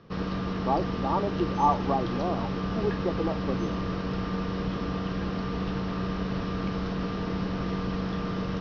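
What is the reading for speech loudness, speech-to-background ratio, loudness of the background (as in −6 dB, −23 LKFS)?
−30.5 LKFS, 0.5 dB, −31.0 LKFS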